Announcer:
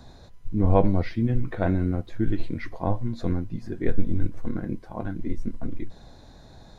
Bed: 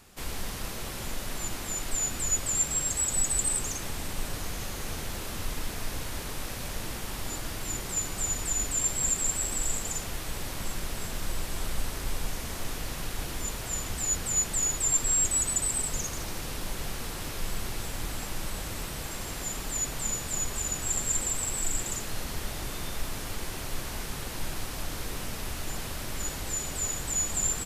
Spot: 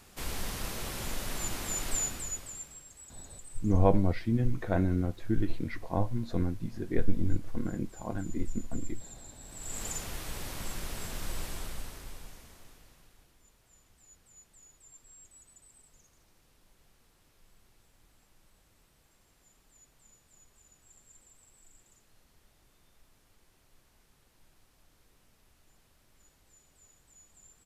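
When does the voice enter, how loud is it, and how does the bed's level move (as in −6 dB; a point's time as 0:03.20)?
3.10 s, −4.0 dB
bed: 0:01.96 −1 dB
0:02.87 −23.5 dB
0:09.39 −23.5 dB
0:09.83 −4 dB
0:11.45 −4 dB
0:13.37 −30.5 dB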